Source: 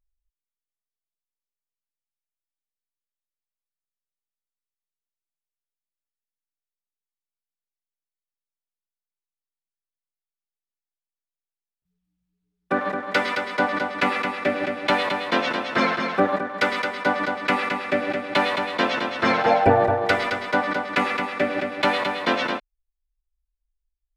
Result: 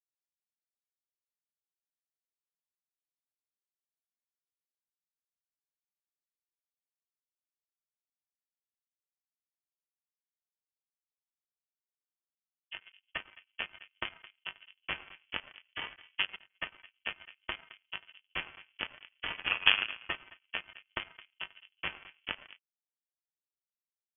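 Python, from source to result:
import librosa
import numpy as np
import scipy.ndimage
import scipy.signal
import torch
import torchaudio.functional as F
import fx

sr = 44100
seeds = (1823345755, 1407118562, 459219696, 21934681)

y = fx.power_curve(x, sr, exponent=3.0)
y = fx.env_lowpass(y, sr, base_hz=340.0, full_db=-35.5)
y = fx.freq_invert(y, sr, carrier_hz=3300)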